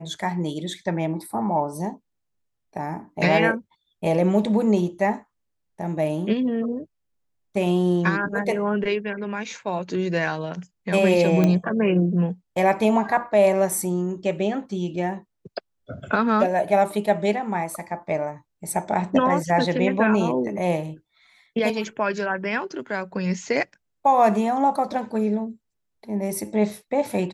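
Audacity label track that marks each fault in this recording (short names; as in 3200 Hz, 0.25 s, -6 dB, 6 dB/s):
11.440000	11.440000	pop -9 dBFS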